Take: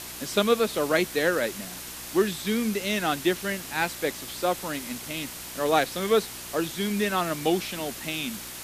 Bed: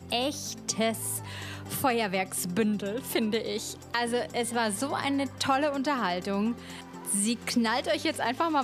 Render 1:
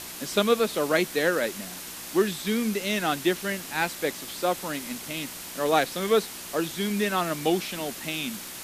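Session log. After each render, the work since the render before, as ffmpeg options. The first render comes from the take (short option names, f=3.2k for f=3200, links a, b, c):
-af "bandreject=f=60:t=h:w=4,bandreject=f=120:t=h:w=4"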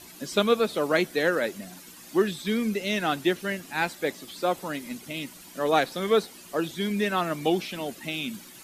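-af "afftdn=nr=12:nf=-39"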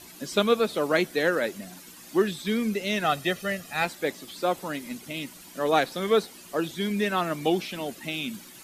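-filter_complex "[0:a]asettb=1/sr,asplit=3[a][b][c];[a]atrim=end=3.044[d];[b]atrim=start=3.04:end=3.85,asetpts=PTS-STARTPTS,afade=t=in:d=0.004:c=qsin,afade=t=out:st=0.806:d=0.004:c=qsin,aecho=1:1:1.6:0.64,atrim=end_sample=35721[e];[c]atrim=start=3.846[f];[d][e]acrossfade=d=0.004:c1=hsin:c2=qsin[g];[g][f]acrossfade=d=0.004:c1=qsin:c2=hsin"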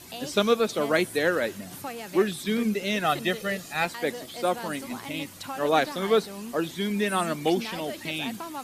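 -filter_complex "[1:a]volume=-10.5dB[a];[0:a][a]amix=inputs=2:normalize=0"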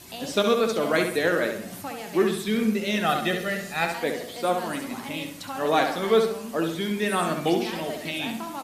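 -filter_complex "[0:a]asplit=2[a][b];[b]adelay=18,volume=-11.5dB[c];[a][c]amix=inputs=2:normalize=0,asplit=2[d][e];[e]adelay=67,lowpass=f=3.2k:p=1,volume=-5dB,asplit=2[f][g];[g]adelay=67,lowpass=f=3.2k:p=1,volume=0.47,asplit=2[h][i];[i]adelay=67,lowpass=f=3.2k:p=1,volume=0.47,asplit=2[j][k];[k]adelay=67,lowpass=f=3.2k:p=1,volume=0.47,asplit=2[l][m];[m]adelay=67,lowpass=f=3.2k:p=1,volume=0.47,asplit=2[n][o];[o]adelay=67,lowpass=f=3.2k:p=1,volume=0.47[p];[f][h][j][l][n][p]amix=inputs=6:normalize=0[q];[d][q]amix=inputs=2:normalize=0"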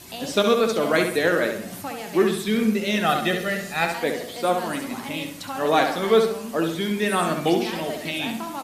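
-af "volume=2.5dB"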